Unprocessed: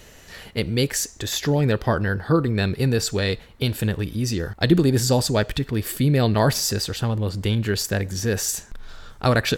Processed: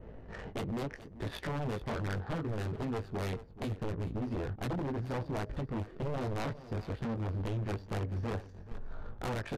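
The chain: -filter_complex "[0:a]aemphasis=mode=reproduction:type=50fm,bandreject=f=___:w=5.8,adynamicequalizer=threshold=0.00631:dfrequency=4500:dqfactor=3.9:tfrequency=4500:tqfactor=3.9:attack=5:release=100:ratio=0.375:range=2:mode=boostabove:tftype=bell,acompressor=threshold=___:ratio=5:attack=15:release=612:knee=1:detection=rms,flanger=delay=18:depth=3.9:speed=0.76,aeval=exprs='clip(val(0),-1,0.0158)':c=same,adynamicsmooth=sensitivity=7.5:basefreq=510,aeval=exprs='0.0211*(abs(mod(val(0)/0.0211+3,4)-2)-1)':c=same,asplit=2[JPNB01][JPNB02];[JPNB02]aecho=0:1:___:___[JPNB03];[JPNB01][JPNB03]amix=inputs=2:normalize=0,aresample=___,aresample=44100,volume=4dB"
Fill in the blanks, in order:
7.9k, -28dB, 430, 0.168, 32000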